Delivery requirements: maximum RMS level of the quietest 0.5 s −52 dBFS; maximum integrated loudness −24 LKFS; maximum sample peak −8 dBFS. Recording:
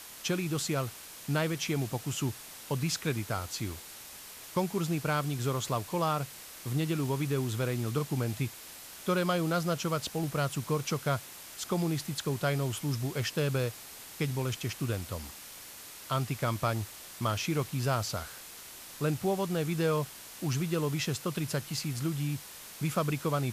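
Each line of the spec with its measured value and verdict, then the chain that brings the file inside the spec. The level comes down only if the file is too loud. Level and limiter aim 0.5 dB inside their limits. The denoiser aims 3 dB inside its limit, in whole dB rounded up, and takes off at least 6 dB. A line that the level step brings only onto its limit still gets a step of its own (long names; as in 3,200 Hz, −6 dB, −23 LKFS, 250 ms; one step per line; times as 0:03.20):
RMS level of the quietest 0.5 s −47 dBFS: out of spec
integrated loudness −32.5 LKFS: in spec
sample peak −16.0 dBFS: in spec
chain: broadband denoise 8 dB, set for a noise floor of −47 dBFS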